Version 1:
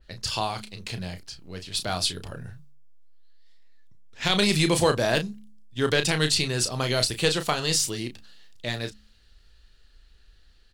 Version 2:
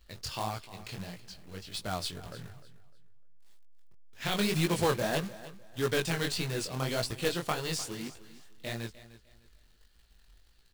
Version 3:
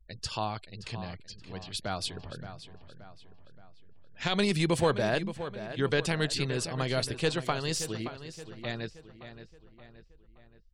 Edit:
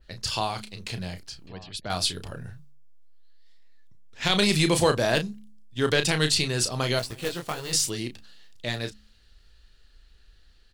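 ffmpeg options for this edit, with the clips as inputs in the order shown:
-filter_complex "[0:a]asplit=3[s0][s1][s2];[s0]atrim=end=1.472[s3];[2:a]atrim=start=1.468:end=1.902[s4];[s1]atrim=start=1.898:end=6.992[s5];[1:a]atrim=start=6.988:end=7.732[s6];[s2]atrim=start=7.728[s7];[s3][s4]acrossfade=d=0.004:c1=hsin:c2=hsin[s8];[s8][s5]acrossfade=d=0.004:c1=hsin:c2=hsin[s9];[s9][s6]acrossfade=d=0.004:c1=hsin:c2=hsin[s10];[s10][s7]acrossfade=d=0.004:c1=hsin:c2=hsin"

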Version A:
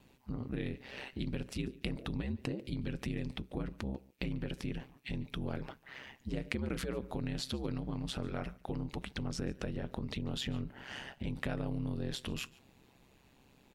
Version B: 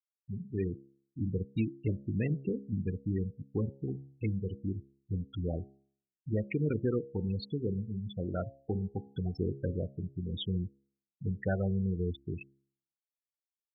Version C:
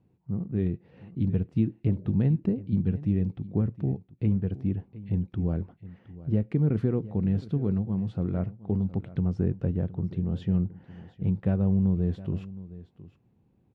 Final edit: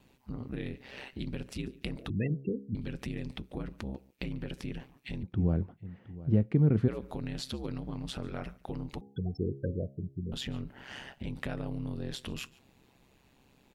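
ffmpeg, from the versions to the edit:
-filter_complex "[1:a]asplit=2[s0][s1];[0:a]asplit=4[s2][s3][s4][s5];[s2]atrim=end=2.102[s6];[s0]atrim=start=2.098:end=2.752[s7];[s3]atrim=start=2.748:end=5.232[s8];[2:a]atrim=start=5.228:end=6.882[s9];[s4]atrim=start=6.878:end=9.012[s10];[s1]atrim=start=9.008:end=10.322[s11];[s5]atrim=start=10.318[s12];[s6][s7]acrossfade=d=0.004:c1=hsin:c2=hsin[s13];[s13][s8]acrossfade=d=0.004:c1=hsin:c2=hsin[s14];[s14][s9]acrossfade=d=0.004:c1=hsin:c2=hsin[s15];[s15][s10]acrossfade=d=0.004:c1=hsin:c2=hsin[s16];[s16][s11]acrossfade=d=0.004:c1=hsin:c2=hsin[s17];[s17][s12]acrossfade=d=0.004:c1=hsin:c2=hsin"

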